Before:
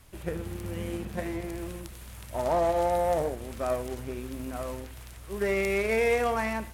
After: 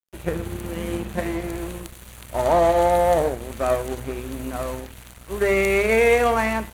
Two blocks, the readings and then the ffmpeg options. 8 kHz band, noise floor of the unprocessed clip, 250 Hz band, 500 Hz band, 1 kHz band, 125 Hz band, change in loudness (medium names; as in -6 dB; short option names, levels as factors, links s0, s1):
+7.5 dB, -45 dBFS, +6.5 dB, +7.5 dB, +8.0 dB, +6.0 dB, +7.5 dB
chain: -af "asuperstop=centerf=5200:order=4:qfactor=5.5,bandreject=f=50:t=h:w=6,bandreject=f=100:t=h:w=6,bandreject=f=150:t=h:w=6,bandreject=f=200:t=h:w=6,bandreject=f=250:t=h:w=6,aeval=exprs='sgn(val(0))*max(abs(val(0))-0.00447,0)':c=same,volume=2.66"